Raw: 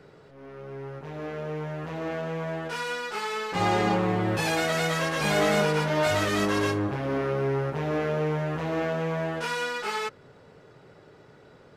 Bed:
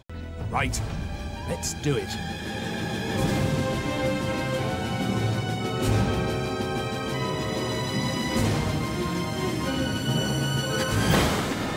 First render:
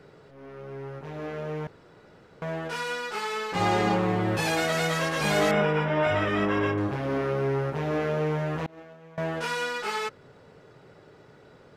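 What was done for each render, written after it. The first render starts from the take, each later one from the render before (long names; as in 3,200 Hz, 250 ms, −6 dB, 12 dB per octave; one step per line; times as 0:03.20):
0:01.67–0:02.42: fill with room tone
0:05.51–0:06.78: Savitzky-Golay smoothing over 25 samples
0:08.66–0:09.18: downward expander −16 dBFS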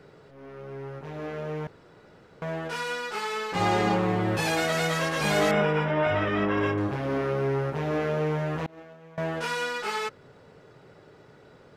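0:05.91–0:06.58: high-frequency loss of the air 95 metres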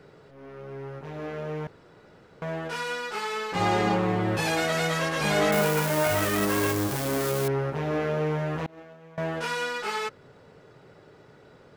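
0:05.52–0:07.48: spike at every zero crossing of −19.5 dBFS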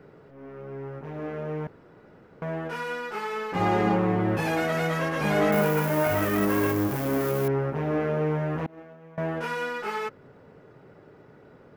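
graphic EQ with 10 bands 250 Hz +4 dB, 4,000 Hz −8 dB, 8,000 Hz −9 dB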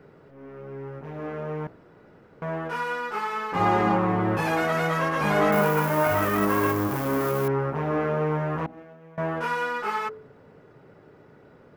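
hum removal 62.12 Hz, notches 13
dynamic equaliser 1,100 Hz, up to +7 dB, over −44 dBFS, Q 1.7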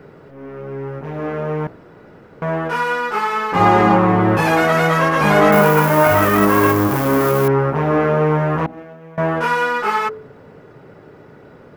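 level +9.5 dB
brickwall limiter −2 dBFS, peak gain reduction 1.5 dB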